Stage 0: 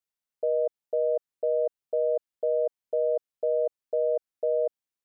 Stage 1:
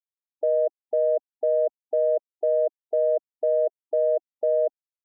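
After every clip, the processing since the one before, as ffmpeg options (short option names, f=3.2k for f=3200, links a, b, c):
-af "afftfilt=real='re*gte(hypot(re,im),0.00891)':imag='im*gte(hypot(re,im),0.00891)':win_size=1024:overlap=0.75,aecho=1:1:3:0.34,acontrast=43,volume=-2dB"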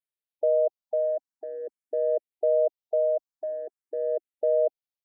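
-filter_complex "[0:a]asplit=2[a][b];[b]afreqshift=0.46[c];[a][c]amix=inputs=2:normalize=1"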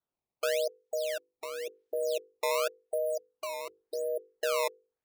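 -filter_complex "[0:a]acrossover=split=480[a][b];[b]acompressor=threshold=-44dB:ratio=3[c];[a][c]amix=inputs=2:normalize=0,acrusher=samples=16:mix=1:aa=0.000001:lfo=1:lforange=25.6:lforate=0.91,bandreject=f=50:t=h:w=6,bandreject=f=100:t=h:w=6,bandreject=f=150:t=h:w=6,bandreject=f=200:t=h:w=6,bandreject=f=250:t=h:w=6,bandreject=f=300:t=h:w=6,bandreject=f=350:t=h:w=6,bandreject=f=400:t=h:w=6,bandreject=f=450:t=h:w=6,bandreject=f=500:t=h:w=6"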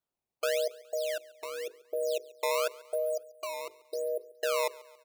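-af "aecho=1:1:139|278|417|556:0.0841|0.0429|0.0219|0.0112"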